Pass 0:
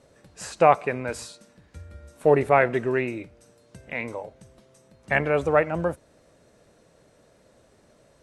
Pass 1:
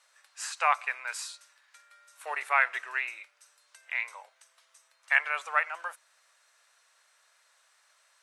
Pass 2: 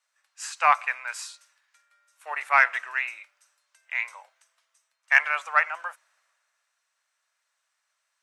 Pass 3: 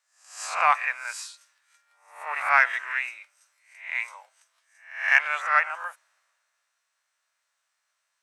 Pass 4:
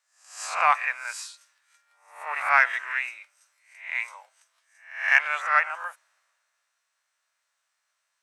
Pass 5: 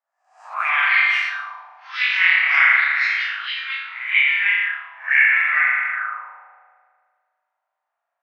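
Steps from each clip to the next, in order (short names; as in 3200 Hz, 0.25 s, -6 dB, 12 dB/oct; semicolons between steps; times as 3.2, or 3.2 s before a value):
HPF 1100 Hz 24 dB/oct; gain +1 dB
fifteen-band EQ 400 Hz -9 dB, 4000 Hz -4 dB, 10000 Hz -5 dB; in parallel at -6 dB: soft clip -16.5 dBFS, distortion -15 dB; on the sum: three-band expander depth 40%
spectral swells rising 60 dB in 0.51 s; gain -2 dB
nothing audible
spring tank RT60 1.9 s, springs 36 ms, chirp 70 ms, DRR -8 dB; echoes that change speed 0.287 s, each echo +5 st, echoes 3; auto-wah 730–2100 Hz, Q 4.2, up, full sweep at -15.5 dBFS; gain +3.5 dB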